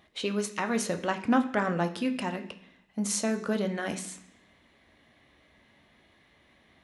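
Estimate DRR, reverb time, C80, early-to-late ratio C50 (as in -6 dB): 6.0 dB, 0.65 s, 15.0 dB, 12.0 dB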